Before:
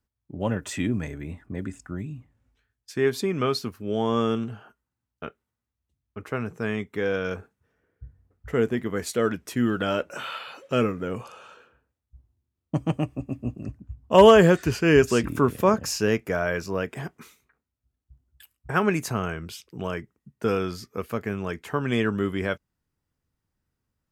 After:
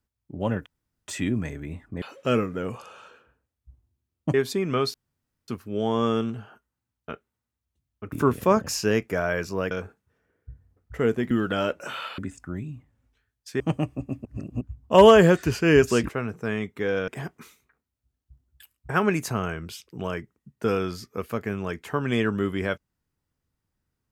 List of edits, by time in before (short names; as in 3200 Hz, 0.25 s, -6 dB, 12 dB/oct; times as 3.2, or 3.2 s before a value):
0.66 insert room tone 0.42 s
1.6–3.02 swap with 10.48–12.8
3.62 insert room tone 0.54 s
6.26–7.25 swap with 15.29–16.88
8.85–9.61 cut
13.45–13.81 reverse